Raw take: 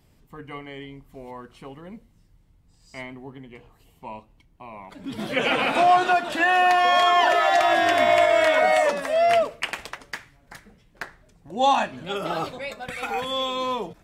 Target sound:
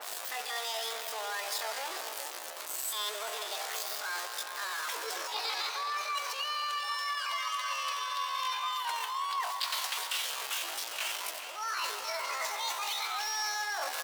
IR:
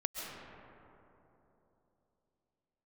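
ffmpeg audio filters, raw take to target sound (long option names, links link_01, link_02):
-filter_complex "[0:a]aeval=exprs='val(0)+0.5*0.0398*sgn(val(0))':channel_layout=same,highpass=frequency=360:width=0.5412,highpass=frequency=360:width=1.3066,areverse,acompressor=threshold=-31dB:ratio=16,areverse,bandreject=frequency=60:width_type=h:width=6,bandreject=frequency=120:width_type=h:width=6,bandreject=frequency=180:width_type=h:width=6,bandreject=frequency=240:width_type=h:width=6,bandreject=frequency=300:width_type=h:width=6,bandreject=frequency=360:width_type=h:width=6,bandreject=frequency=420:width_type=h:width=6,bandreject=frequency=480:width_type=h:width=6,asplit=2[link_01][link_02];[link_02]adelay=410,lowpass=frequency=4900:poles=1,volume=-10.5dB,asplit=2[link_03][link_04];[link_04]adelay=410,lowpass=frequency=4900:poles=1,volume=0.33,asplit=2[link_05][link_06];[link_06]adelay=410,lowpass=frequency=4900:poles=1,volume=0.33,asplit=2[link_07][link_08];[link_08]adelay=410,lowpass=frequency=4900:poles=1,volume=0.33[link_09];[link_01][link_03][link_05][link_07][link_09]amix=inputs=5:normalize=0,asplit=2[link_10][link_11];[1:a]atrim=start_sample=2205[link_12];[link_11][link_12]afir=irnorm=-1:irlink=0,volume=-5.5dB[link_13];[link_10][link_13]amix=inputs=2:normalize=0,asetrate=72056,aresample=44100,atempo=0.612027,adynamicequalizer=threshold=0.00631:dfrequency=3100:dqfactor=0.7:tfrequency=3100:tqfactor=0.7:attack=5:release=100:ratio=0.375:range=2.5:mode=boostabove:tftype=highshelf,volume=-5dB"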